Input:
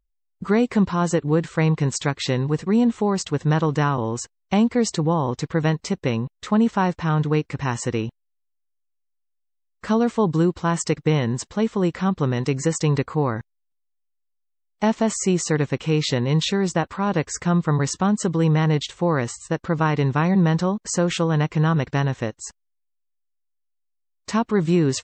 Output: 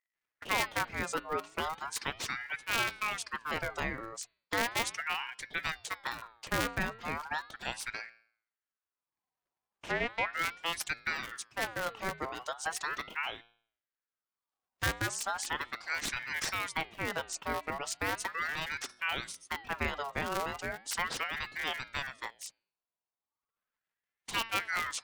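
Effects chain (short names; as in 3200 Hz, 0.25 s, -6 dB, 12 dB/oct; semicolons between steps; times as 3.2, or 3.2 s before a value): cycle switcher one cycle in 2, inverted; reverb removal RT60 1.3 s; de-hum 113.8 Hz, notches 33; 7.88–10.33 treble ducked by the level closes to 1700 Hz, closed at -18 dBFS; low shelf 360 Hz -10 dB; ring modulator with a swept carrier 1400 Hz, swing 40%, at 0.37 Hz; gain -6 dB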